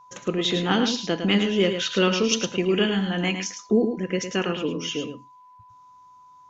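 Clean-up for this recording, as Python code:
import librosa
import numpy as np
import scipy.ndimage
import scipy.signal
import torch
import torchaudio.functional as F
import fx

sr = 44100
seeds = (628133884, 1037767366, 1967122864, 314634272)

y = fx.notch(x, sr, hz=1000.0, q=30.0)
y = fx.fix_echo_inverse(y, sr, delay_ms=107, level_db=-7.5)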